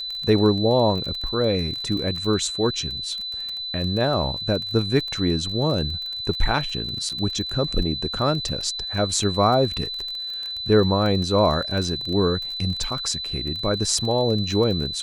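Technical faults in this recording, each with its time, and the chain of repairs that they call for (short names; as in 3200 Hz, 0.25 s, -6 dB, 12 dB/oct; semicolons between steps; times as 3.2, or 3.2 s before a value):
crackle 27/s -28 dBFS
tone 4000 Hz -28 dBFS
7.09–7.1 gap 5.8 ms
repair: de-click; notch 4000 Hz, Q 30; interpolate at 7.09, 5.8 ms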